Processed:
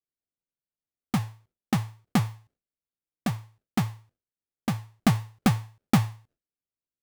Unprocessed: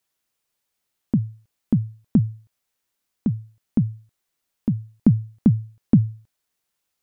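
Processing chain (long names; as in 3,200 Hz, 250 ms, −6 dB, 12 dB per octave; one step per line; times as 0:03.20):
sample-rate reduction 1,000 Hz, jitter 20%
noise gate with hold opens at −53 dBFS
level −5.5 dB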